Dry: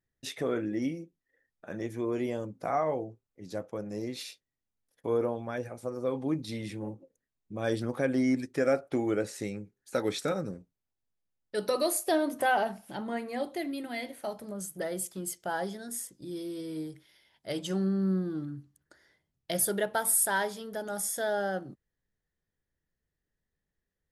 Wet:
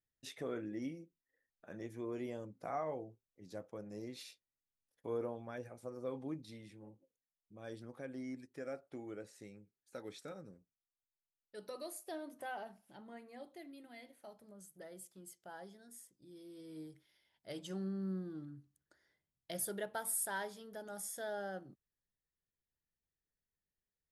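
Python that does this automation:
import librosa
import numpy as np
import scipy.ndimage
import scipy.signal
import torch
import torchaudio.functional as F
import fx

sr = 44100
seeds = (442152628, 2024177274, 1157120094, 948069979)

y = fx.gain(x, sr, db=fx.line((6.19, -10.5), (6.72, -18.0), (16.35, -18.0), (16.84, -11.5)))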